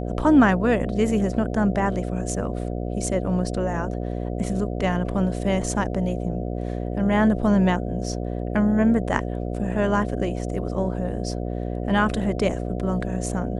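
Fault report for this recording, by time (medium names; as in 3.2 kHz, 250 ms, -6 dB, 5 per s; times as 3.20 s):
buzz 60 Hz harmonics 12 -28 dBFS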